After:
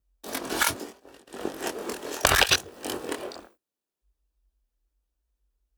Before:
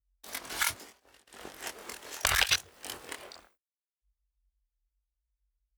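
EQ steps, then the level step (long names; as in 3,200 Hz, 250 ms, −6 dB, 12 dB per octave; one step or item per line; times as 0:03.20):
parametric band 320 Hz +13.5 dB 2.3 octaves
notch filter 2,100 Hz, Q 10
+4.5 dB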